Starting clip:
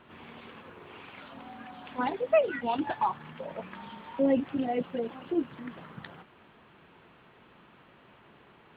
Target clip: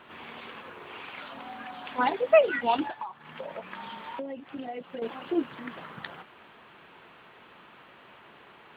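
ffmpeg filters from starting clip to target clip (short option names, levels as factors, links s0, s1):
-filter_complex "[0:a]lowshelf=f=330:g=-11.5,asettb=1/sr,asplit=3[s0][s1][s2];[s0]atrim=end=2.864[s3];[s1]atrim=start=2.86:end=5.02,asetpts=PTS-STARTPTS,afade=t=in:d=0.004:c=qsin,afade=t=out:st=2.156:d=0.004:c=qsin,acompressor=threshold=0.00891:ratio=16[s4];[s2]atrim=start=5.016[s5];[s3][s4]acrossfade=d=0.004:c1=hsin:c2=qsin[s6];[s6][s5]acrossfade=d=0.004:c1=qsin:c2=hsin,volume=2.24"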